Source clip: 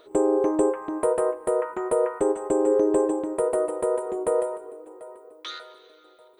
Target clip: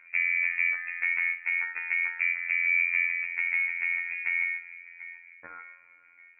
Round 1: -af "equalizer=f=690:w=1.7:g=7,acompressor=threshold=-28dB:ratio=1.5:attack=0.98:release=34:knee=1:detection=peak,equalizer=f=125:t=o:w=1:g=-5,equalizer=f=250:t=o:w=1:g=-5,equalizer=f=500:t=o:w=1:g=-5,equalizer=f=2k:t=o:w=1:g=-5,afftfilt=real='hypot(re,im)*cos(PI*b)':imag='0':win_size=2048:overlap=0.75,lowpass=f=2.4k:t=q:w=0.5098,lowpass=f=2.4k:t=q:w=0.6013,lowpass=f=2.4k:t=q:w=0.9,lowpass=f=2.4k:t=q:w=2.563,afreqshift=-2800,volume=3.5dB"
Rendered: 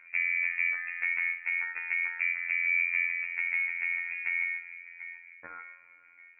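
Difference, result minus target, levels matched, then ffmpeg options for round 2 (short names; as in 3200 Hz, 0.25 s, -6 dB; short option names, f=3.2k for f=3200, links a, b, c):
compressor: peak gain reduction +2.5 dB
-af "equalizer=f=690:w=1.7:g=7,acompressor=threshold=-20.5dB:ratio=1.5:attack=0.98:release=34:knee=1:detection=peak,equalizer=f=125:t=o:w=1:g=-5,equalizer=f=250:t=o:w=1:g=-5,equalizer=f=500:t=o:w=1:g=-5,equalizer=f=2k:t=o:w=1:g=-5,afftfilt=real='hypot(re,im)*cos(PI*b)':imag='0':win_size=2048:overlap=0.75,lowpass=f=2.4k:t=q:w=0.5098,lowpass=f=2.4k:t=q:w=0.6013,lowpass=f=2.4k:t=q:w=0.9,lowpass=f=2.4k:t=q:w=2.563,afreqshift=-2800,volume=3.5dB"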